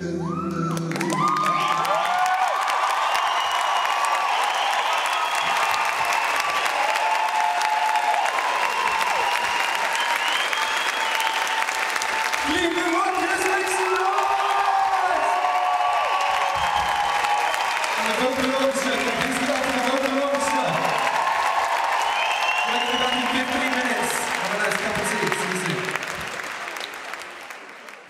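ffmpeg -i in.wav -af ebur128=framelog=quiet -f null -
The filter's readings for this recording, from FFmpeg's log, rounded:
Integrated loudness:
  I:         -21.6 LUFS
  Threshold: -31.7 LUFS
Loudness range:
  LRA:         1.2 LU
  Threshold: -41.5 LUFS
  LRA low:   -22.1 LUFS
  LRA high:  -20.9 LUFS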